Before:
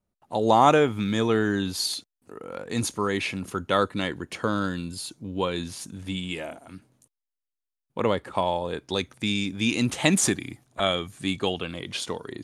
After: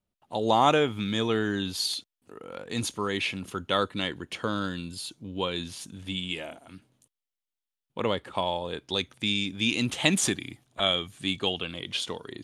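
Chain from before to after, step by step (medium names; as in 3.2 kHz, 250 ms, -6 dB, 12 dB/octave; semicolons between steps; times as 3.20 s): peaking EQ 3.2 kHz +7.5 dB 0.74 oct; trim -4 dB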